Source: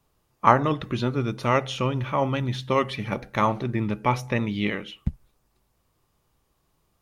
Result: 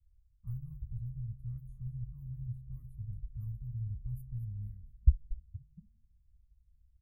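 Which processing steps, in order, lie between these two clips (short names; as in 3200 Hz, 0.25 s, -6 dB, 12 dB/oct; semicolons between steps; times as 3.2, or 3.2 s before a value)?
low-pass opened by the level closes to 2000 Hz, open at -18.5 dBFS; inverse Chebyshev band-stop 310–5800 Hz, stop band 70 dB; frequency-shifting echo 0.231 s, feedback 31%, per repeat -76 Hz, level -12.5 dB; gain +9 dB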